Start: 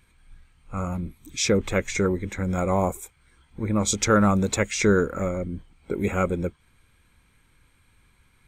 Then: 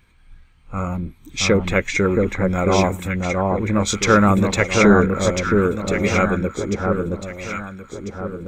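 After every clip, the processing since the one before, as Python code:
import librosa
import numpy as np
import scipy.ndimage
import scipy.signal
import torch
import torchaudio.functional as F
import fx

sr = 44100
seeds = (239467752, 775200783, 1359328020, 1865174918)

y = fx.peak_eq(x, sr, hz=10000.0, db=-9.5, octaves=0.92)
y = fx.echo_alternate(y, sr, ms=673, hz=1300.0, feedback_pct=64, wet_db=-2)
y = fx.dynamic_eq(y, sr, hz=2300.0, q=0.97, threshold_db=-40.0, ratio=4.0, max_db=5)
y = y * librosa.db_to_amplitude(4.0)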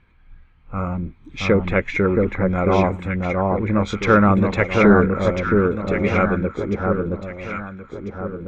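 y = scipy.signal.sosfilt(scipy.signal.butter(2, 2400.0, 'lowpass', fs=sr, output='sos'), x)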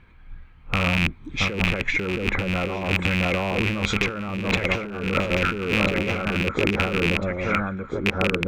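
y = fx.rattle_buzz(x, sr, strikes_db=-29.0, level_db=-11.0)
y = fx.over_compress(y, sr, threshold_db=-24.0, ratio=-1.0)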